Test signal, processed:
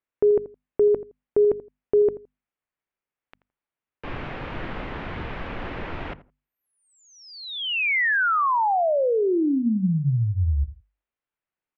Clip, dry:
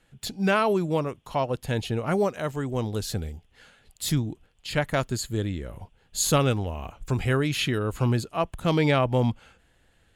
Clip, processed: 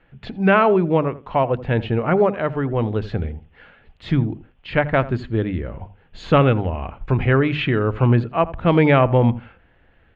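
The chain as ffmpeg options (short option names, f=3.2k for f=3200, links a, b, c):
-filter_complex "[0:a]lowpass=f=2.6k:w=0.5412,lowpass=f=2.6k:w=1.3066,bandreject=f=50:t=h:w=6,bandreject=f=100:t=h:w=6,bandreject=f=150:t=h:w=6,bandreject=f=200:t=h:w=6,bandreject=f=250:t=h:w=6,asplit=2[a][b];[b]adelay=83,lowpass=f=1.2k:p=1,volume=-15.5dB,asplit=2[c][d];[d]adelay=83,lowpass=f=1.2k:p=1,volume=0.19[e];[a][c][e]amix=inputs=3:normalize=0,volume=7.5dB"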